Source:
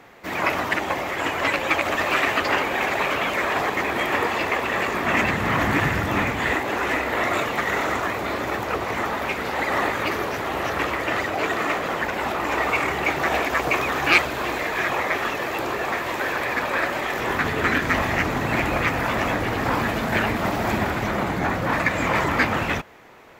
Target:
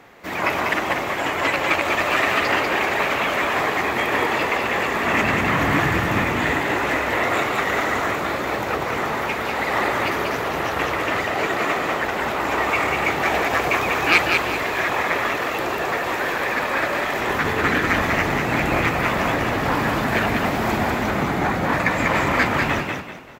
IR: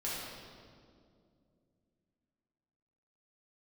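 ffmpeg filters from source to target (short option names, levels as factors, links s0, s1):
-filter_complex "[0:a]asplit=5[s0][s1][s2][s3][s4];[s1]adelay=194,afreqshift=38,volume=0.631[s5];[s2]adelay=388,afreqshift=76,volume=0.209[s6];[s3]adelay=582,afreqshift=114,volume=0.0684[s7];[s4]adelay=776,afreqshift=152,volume=0.0226[s8];[s0][s5][s6][s7][s8]amix=inputs=5:normalize=0,asettb=1/sr,asplit=3[s9][s10][s11];[s9]atrim=end=12.754[s12];[s10]atrim=start=12.75:end=13.69,asetpts=PTS-STARTPTS,afade=t=in:d=0.004:c=qsin,afade=t=out:st=0.936:d=0.004:c=qsin,asoftclip=type=hard:threshold=0.251[s13];[s11]atrim=start=13.686[s14];[s12][s13]acrossfade=d=0.004:c1=hsin:c2=qsin[s15];[s15][s14]acrossfade=d=0.004:c1=qsin:c2=hsin,asplit=2[s16][s17];[1:a]atrim=start_sample=2205[s18];[s17][s18]afir=irnorm=-1:irlink=0,volume=0.0841[s19];[s16][s19]amix=inputs=2:normalize=0"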